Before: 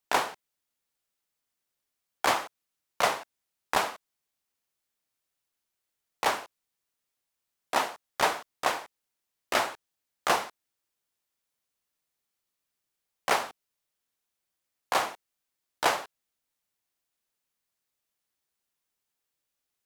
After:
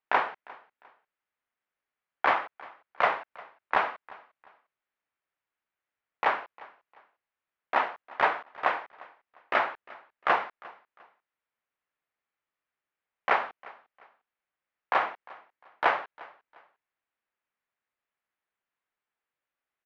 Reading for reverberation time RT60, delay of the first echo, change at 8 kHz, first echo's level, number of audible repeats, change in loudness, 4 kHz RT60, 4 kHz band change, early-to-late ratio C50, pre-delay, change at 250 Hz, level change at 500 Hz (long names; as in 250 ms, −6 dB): no reverb audible, 352 ms, below −25 dB, −22.0 dB, 2, +0.5 dB, no reverb audible, −8.0 dB, no reverb audible, no reverb audible, −4.0 dB, −0.5 dB